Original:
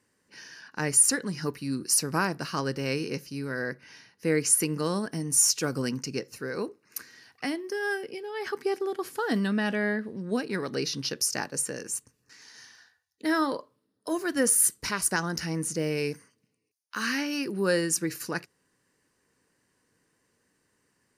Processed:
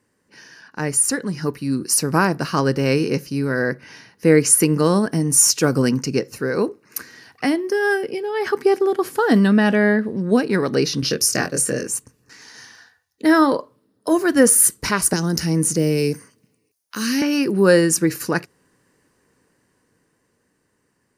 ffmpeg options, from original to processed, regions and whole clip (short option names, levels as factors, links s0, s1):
-filter_complex "[0:a]asettb=1/sr,asplit=3[s0][s1][s2];[s0]atrim=end=11.004[s3];[s1]atrim=start=11:end=11.87,asetpts=PTS-STARTPTS,afade=t=in:d=0.004:c=qsin,afade=t=out:st=0.866:d=0.004:c=qsin,equalizer=f=890:t=o:w=0.25:g=-14.5,asplit=2[s4][s5];[s5]adelay=24,volume=0.668[s6];[s4][s6]amix=inputs=2:normalize=0,atrim=end_sample=38367[s7];[s2]atrim=start=11.866[s8];[s3][s7]acrossfade=d=0.004:c1=hsin:c2=qsin[s9];[s9][s8]acrossfade=d=0.004:c1=qsin:c2=hsin,asettb=1/sr,asplit=3[s10][s11][s12];[s10]atrim=end=15.134[s13];[s11]atrim=start=15.13:end=17.22,asetpts=PTS-STARTPTS,afade=t=in:d=0.004:c=qsin,afade=t=out:st=2.086:d=0.004:c=qsin,highshelf=f=6000:g=6,acrossover=split=470|3000[s14][s15][s16];[s15]acompressor=threshold=0.00501:ratio=2.5:attack=3.2:release=140:knee=2.83:detection=peak[s17];[s14][s17][s16]amix=inputs=3:normalize=0[s18];[s12]atrim=start=17.216[s19];[s13][s18]acrossfade=d=0.004:c1=hsin:c2=qsin[s20];[s20][s19]acrossfade=d=0.004:c1=qsin:c2=hsin,highshelf=f=2000:g=-9,dynaudnorm=f=290:g=13:m=2.11,highshelf=f=6300:g=5.5,volume=2"